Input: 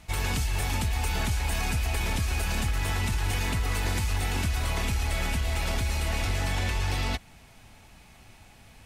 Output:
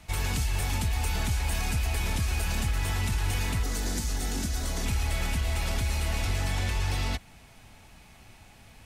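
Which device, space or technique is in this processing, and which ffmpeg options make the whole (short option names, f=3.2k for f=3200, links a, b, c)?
one-band saturation: -filter_complex "[0:a]asettb=1/sr,asplit=3[a][b][c];[a]atrim=end=3.634[d];[b]atrim=start=3.63:end=4.86,asetpts=PTS-STARTPTS,afade=t=in:d=0.004:c=qsin,afade=t=out:st=1.226:d=0.004:c=qsin,equalizer=f=100:t=o:w=0.67:g=-11,equalizer=f=250:t=o:w=0.67:g=5,equalizer=f=1k:t=o:w=0.67:g=-7,equalizer=f=2.5k:t=o:w=0.67:g=-9,equalizer=f=6.3k:t=o:w=0.67:g=5[e];[c]atrim=start=4.856[f];[d][e]acrossfade=d=0.004:c1=hsin:c2=qsin[g];[g][f]acrossfade=d=0.004:c1=qsin:c2=hsin,acrossover=split=210|4200[h][i][j];[i]asoftclip=type=tanh:threshold=-31.5dB[k];[h][k][j]amix=inputs=3:normalize=0"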